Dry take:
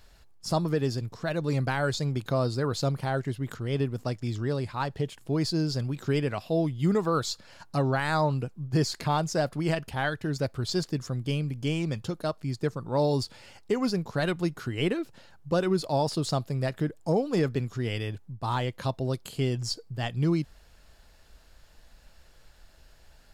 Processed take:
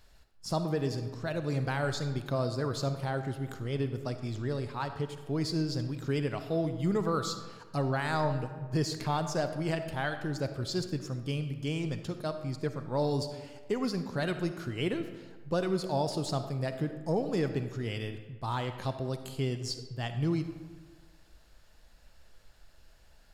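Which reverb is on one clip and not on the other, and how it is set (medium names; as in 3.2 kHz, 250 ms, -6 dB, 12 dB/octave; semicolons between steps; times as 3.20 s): algorithmic reverb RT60 1.4 s, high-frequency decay 0.6×, pre-delay 15 ms, DRR 8.5 dB; trim -4.5 dB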